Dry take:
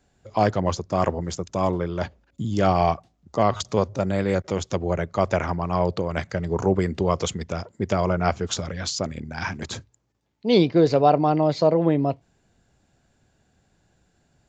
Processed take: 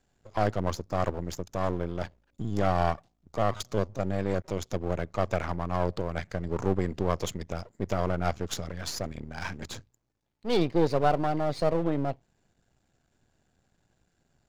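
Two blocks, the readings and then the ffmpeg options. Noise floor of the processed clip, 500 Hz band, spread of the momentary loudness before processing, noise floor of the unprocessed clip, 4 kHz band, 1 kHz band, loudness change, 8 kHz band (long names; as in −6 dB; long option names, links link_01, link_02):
−74 dBFS, −7.0 dB, 12 LU, −67 dBFS, −7.0 dB, −6.5 dB, −6.5 dB, −7.0 dB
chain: -af "aeval=exprs='if(lt(val(0),0),0.251*val(0),val(0))':channel_layout=same,volume=-3.5dB"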